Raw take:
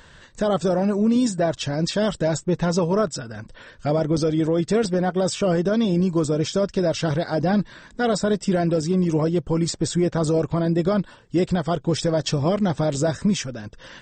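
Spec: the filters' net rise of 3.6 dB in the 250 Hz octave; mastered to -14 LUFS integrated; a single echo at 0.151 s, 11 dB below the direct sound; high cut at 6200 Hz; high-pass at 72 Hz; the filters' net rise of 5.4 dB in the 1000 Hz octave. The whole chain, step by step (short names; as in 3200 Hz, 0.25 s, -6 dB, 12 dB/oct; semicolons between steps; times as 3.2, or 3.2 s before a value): HPF 72 Hz; LPF 6200 Hz; bell 250 Hz +5 dB; bell 1000 Hz +7.5 dB; echo 0.151 s -11 dB; gain +5 dB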